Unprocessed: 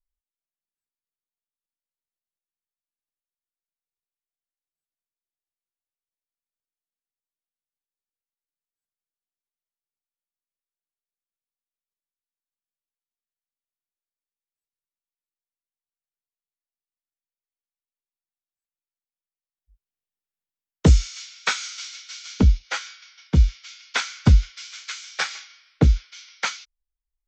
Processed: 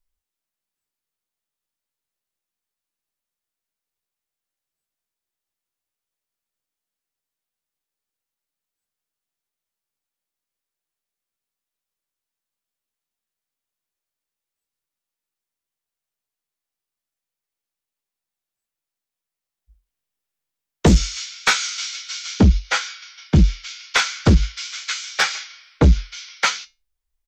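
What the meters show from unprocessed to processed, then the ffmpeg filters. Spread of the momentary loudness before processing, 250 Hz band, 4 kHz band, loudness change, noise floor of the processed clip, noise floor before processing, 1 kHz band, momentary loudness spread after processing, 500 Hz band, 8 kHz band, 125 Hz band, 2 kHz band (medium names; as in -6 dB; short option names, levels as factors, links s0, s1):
18 LU, +5.5 dB, +7.0 dB, +3.0 dB, under -85 dBFS, under -85 dBFS, +7.0 dB, 14 LU, +6.5 dB, +7.0 dB, +1.5 dB, +7.0 dB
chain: -filter_complex "[0:a]asplit=2[s0][s1];[s1]adelay=14,volume=0.282[s2];[s0][s2]amix=inputs=2:normalize=0,flanger=delay=8.8:depth=3.6:regen=-71:speed=0.32:shape=sinusoidal,aeval=exprs='0.447*sin(PI/2*2.51*val(0)/0.447)':c=same"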